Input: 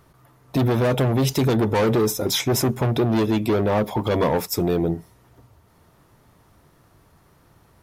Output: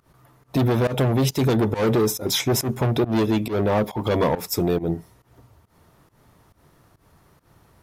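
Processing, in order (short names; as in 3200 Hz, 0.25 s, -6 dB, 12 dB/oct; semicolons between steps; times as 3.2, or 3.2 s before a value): pump 138 bpm, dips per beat 1, -19 dB, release 0.146 s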